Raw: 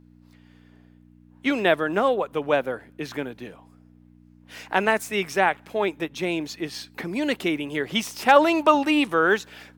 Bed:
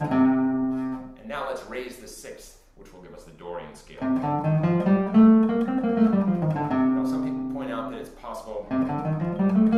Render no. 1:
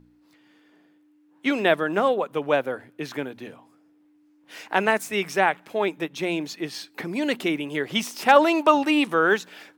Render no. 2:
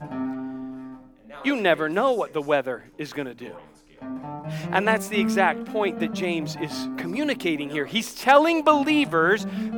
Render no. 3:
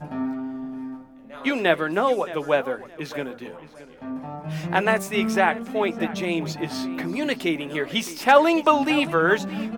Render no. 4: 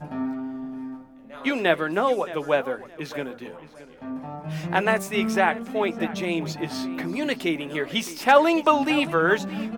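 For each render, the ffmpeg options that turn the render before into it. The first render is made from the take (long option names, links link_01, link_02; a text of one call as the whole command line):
ffmpeg -i in.wav -af "bandreject=frequency=60:width_type=h:width=4,bandreject=frequency=120:width_type=h:width=4,bandreject=frequency=180:width_type=h:width=4,bandreject=frequency=240:width_type=h:width=4" out.wav
ffmpeg -i in.wav -i bed.wav -filter_complex "[1:a]volume=-9.5dB[link_01];[0:a][link_01]amix=inputs=2:normalize=0" out.wav
ffmpeg -i in.wav -filter_complex "[0:a]asplit=2[link_01][link_02];[link_02]adelay=12,volume=-10.5dB[link_03];[link_01][link_03]amix=inputs=2:normalize=0,asplit=2[link_04][link_05];[link_05]adelay=619,lowpass=frequency=3900:poles=1,volume=-16dB,asplit=2[link_06][link_07];[link_07]adelay=619,lowpass=frequency=3900:poles=1,volume=0.26,asplit=2[link_08][link_09];[link_09]adelay=619,lowpass=frequency=3900:poles=1,volume=0.26[link_10];[link_04][link_06][link_08][link_10]amix=inputs=4:normalize=0" out.wav
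ffmpeg -i in.wav -af "volume=-1dB" out.wav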